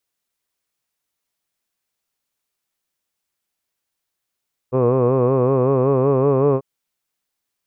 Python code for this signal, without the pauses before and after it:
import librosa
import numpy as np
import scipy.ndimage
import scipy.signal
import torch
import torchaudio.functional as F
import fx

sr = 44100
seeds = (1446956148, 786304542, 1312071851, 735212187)

y = fx.formant_vowel(sr, seeds[0], length_s=1.89, hz=124.0, glide_st=2.0, vibrato_hz=5.3, vibrato_st=0.9, f1_hz=460.0, f2_hz=1100.0, f3_hz=2500.0)